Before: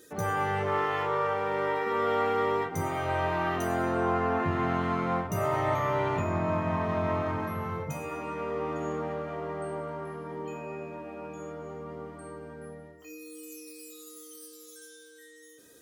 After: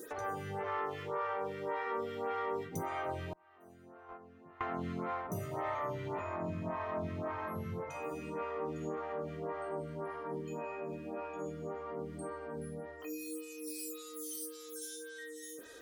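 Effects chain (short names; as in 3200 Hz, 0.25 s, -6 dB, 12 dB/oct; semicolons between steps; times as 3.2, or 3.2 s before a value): 3.33–4.61 gate -21 dBFS, range -34 dB; compressor 3:1, threshold -47 dBFS, peak gain reduction 17 dB; photocell phaser 1.8 Hz; gain +9 dB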